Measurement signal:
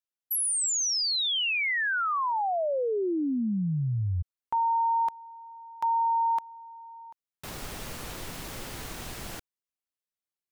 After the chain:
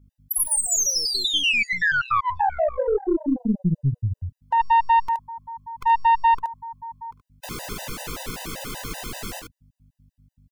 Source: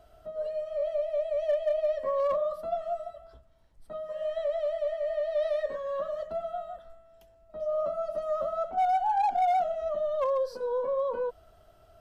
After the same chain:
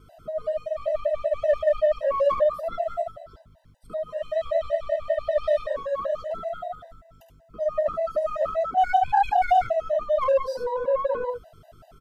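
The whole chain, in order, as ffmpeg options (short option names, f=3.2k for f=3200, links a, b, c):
-af "equalizer=f=70:w=1.5:g=-6.5,aeval=exprs='val(0)+0.001*(sin(2*PI*50*n/s)+sin(2*PI*2*50*n/s)/2+sin(2*PI*3*50*n/s)/3+sin(2*PI*4*50*n/s)/4+sin(2*PI*5*50*n/s)/5)':c=same,aecho=1:1:51|73:0.2|0.531,aeval=exprs='(tanh(10*val(0)+0.35)-tanh(0.35))/10':c=same,afftfilt=real='re*gt(sin(2*PI*5.2*pts/sr)*(1-2*mod(floor(b*sr/1024/510),2)),0)':imag='im*gt(sin(2*PI*5.2*pts/sr)*(1-2*mod(floor(b*sr/1024/510),2)),0)':win_size=1024:overlap=0.75,volume=9dB"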